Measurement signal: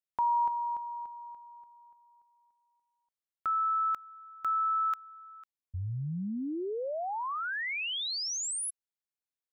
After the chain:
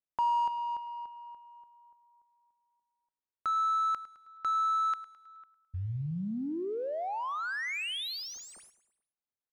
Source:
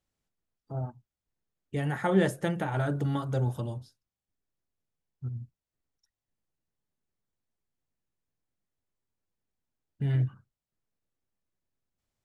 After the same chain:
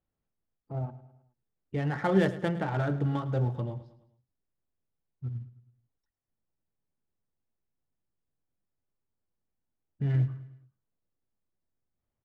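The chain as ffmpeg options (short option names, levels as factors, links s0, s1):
-af "acrusher=bits=8:mode=log:mix=0:aa=0.000001,adynamicsmooth=sensitivity=7:basefreq=1900,aecho=1:1:106|212|318|424:0.158|0.0777|0.0381|0.0186"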